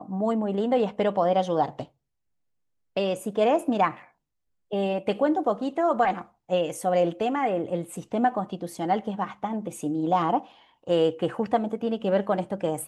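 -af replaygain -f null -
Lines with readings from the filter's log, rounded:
track_gain = +5.8 dB
track_peak = 0.262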